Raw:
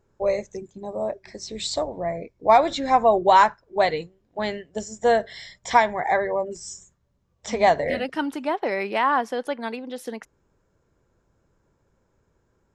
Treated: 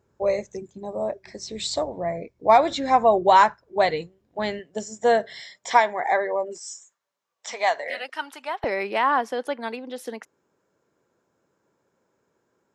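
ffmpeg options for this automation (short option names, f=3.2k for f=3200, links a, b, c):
-af "asetnsamples=n=441:p=0,asendcmd='4.59 highpass f 150;5.41 highpass f 320;6.58 highpass f 860;8.64 highpass f 230',highpass=57"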